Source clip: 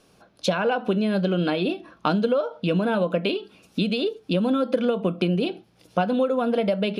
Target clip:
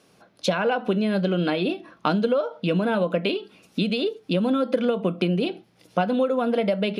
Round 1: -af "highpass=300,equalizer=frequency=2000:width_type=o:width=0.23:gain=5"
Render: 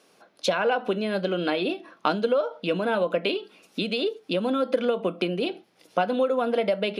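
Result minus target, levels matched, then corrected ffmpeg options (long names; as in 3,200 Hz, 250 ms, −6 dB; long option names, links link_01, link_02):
125 Hz band −7.0 dB
-af "highpass=96,equalizer=frequency=2000:width_type=o:width=0.23:gain=5"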